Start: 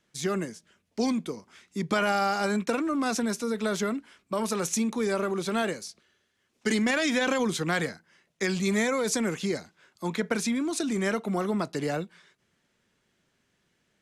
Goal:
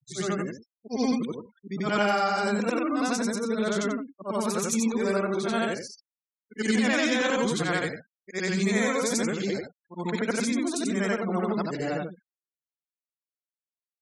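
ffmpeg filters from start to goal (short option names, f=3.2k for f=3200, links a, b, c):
-af "afftfilt=real='re':imag='-im':win_size=8192:overlap=0.75,afftfilt=real='re*gte(hypot(re,im),0.00501)':imag='im*gte(hypot(re,im),0.00501)':win_size=1024:overlap=0.75,volume=5.5dB"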